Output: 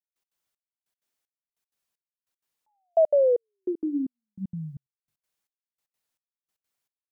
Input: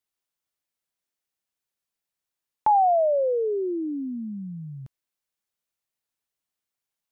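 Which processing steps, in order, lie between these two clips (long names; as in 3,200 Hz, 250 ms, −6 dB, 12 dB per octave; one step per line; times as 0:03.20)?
mains-hum notches 50/100/150/200/250/300/350 Hz
gate pattern "..x.xxx.." 192 BPM −60 dB
level +3.5 dB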